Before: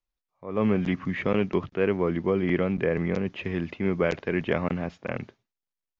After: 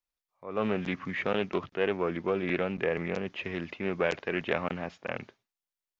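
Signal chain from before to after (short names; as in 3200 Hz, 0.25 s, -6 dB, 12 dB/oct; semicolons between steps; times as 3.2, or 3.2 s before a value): low shelf 340 Hz -10.5 dB; Doppler distortion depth 0.15 ms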